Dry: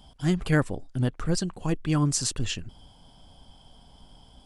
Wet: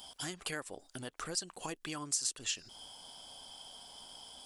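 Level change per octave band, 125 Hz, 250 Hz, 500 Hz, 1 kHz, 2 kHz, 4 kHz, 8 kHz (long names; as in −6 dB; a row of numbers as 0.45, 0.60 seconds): −25.5, −20.0, −14.0, −8.5, −9.5, −4.0, −4.0 decibels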